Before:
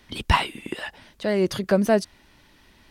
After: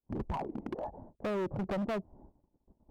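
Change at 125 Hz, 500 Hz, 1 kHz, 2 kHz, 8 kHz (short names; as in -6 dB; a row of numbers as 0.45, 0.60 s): -11.5 dB, -13.0 dB, -13.0 dB, -18.0 dB, under -20 dB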